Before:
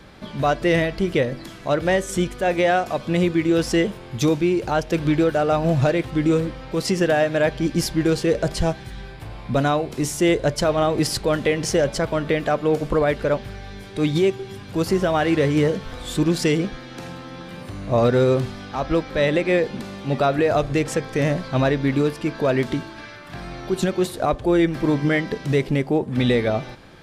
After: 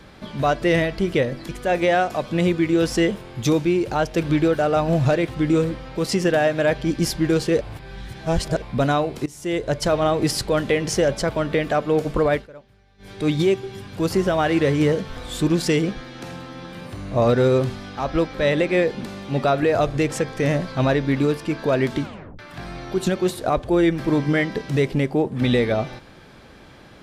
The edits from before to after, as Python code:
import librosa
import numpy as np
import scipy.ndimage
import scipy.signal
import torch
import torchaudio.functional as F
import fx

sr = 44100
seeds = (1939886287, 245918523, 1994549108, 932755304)

y = fx.edit(x, sr, fx.cut(start_s=1.49, length_s=0.76),
    fx.reverse_span(start_s=8.37, length_s=1.01),
    fx.fade_in_from(start_s=10.02, length_s=0.6, floor_db=-21.5),
    fx.fade_down_up(start_s=13.1, length_s=0.77, db=-21.5, fade_s=0.13),
    fx.tape_stop(start_s=22.78, length_s=0.37), tone=tone)